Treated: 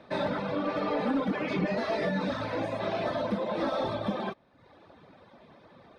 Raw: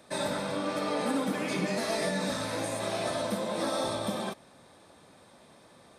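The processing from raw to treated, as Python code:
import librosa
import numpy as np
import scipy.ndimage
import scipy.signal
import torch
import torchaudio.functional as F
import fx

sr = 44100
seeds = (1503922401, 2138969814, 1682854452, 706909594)

p1 = fx.dereverb_blind(x, sr, rt60_s=0.82)
p2 = np.clip(p1, -10.0 ** (-30.5 / 20.0), 10.0 ** (-30.5 / 20.0))
p3 = p1 + (p2 * 10.0 ** (-2.0 / 20.0))
y = fx.air_absorb(p3, sr, metres=280.0)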